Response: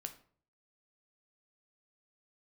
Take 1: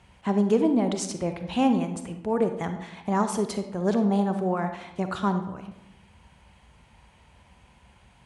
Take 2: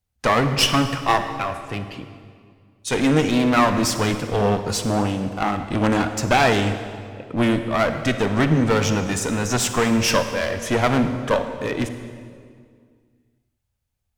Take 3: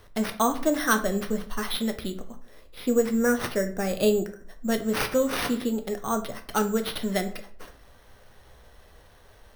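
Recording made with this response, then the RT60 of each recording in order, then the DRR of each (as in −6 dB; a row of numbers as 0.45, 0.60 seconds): 3; 0.90, 2.0, 0.50 seconds; 7.0, 8.0, 6.5 decibels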